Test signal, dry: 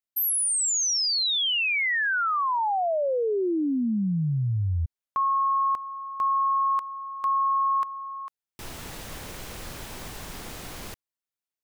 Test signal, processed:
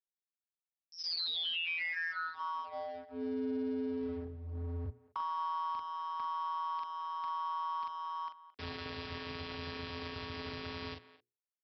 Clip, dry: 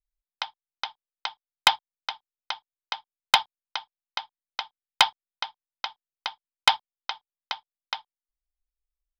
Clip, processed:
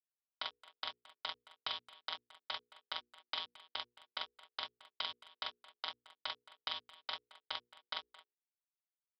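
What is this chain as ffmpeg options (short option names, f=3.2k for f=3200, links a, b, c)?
-filter_complex "[0:a]afftfilt=real='hypot(re,im)*cos(PI*b)':imag='0':win_size=512:overlap=0.75,aeval=exprs='val(0)*sin(2*PI*84*n/s)':c=same,acrossover=split=320|2600[a][b][c];[b]acompressor=threshold=-49dB:ratio=2:attack=70:release=545:knee=2.83:detection=peak[d];[a][d][c]amix=inputs=3:normalize=0,asplit=2[e][f];[f]adelay=42,volume=-5dB[g];[e][g]amix=inputs=2:normalize=0,anlmdn=0.000251,acompressor=threshold=-37dB:ratio=12:attack=1.1:release=45:knee=1:detection=peak,adynamicequalizer=threshold=0.00141:dfrequency=810:dqfactor=2:tfrequency=810:tqfactor=2:attack=5:release=100:ratio=0.4:range=1.5:mode=cutabove:tftype=bell,aresample=11025,aeval=exprs='sgn(val(0))*max(abs(val(0))-0.0015,0)':c=same,aresample=44100,highpass=77,bandreject=f=60:t=h:w=6,bandreject=f=120:t=h:w=6,bandreject=f=180:t=h:w=6,bandreject=f=240:t=h:w=6,bandreject=f=300:t=h:w=6,bandreject=f=360:t=h:w=6,bandreject=f=420:t=h:w=6,bandreject=f=480:t=h:w=6,asplit=2[h][i];[i]adelay=220,highpass=300,lowpass=3.4k,asoftclip=type=hard:threshold=-37dB,volume=-16dB[j];[h][j]amix=inputs=2:normalize=0,volume=6dB"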